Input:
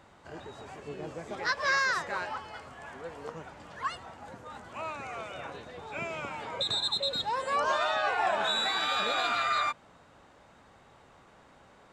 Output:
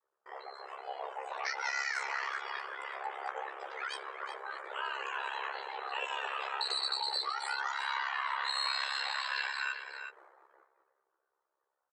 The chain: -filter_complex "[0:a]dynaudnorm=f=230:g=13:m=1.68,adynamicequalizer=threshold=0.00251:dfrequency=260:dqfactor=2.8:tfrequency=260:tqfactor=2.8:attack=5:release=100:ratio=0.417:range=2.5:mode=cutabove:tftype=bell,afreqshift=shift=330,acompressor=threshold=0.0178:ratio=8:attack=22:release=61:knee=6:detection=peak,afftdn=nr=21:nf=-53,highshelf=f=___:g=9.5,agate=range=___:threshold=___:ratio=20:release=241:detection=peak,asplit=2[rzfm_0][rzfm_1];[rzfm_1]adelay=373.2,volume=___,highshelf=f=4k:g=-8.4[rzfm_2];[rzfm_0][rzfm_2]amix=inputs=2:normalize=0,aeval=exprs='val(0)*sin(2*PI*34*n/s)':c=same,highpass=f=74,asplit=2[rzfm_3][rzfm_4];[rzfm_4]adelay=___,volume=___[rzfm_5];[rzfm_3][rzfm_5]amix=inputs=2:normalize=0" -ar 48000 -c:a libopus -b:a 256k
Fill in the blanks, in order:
7.8k, 0.0794, 0.00178, 0.501, 15, 0.531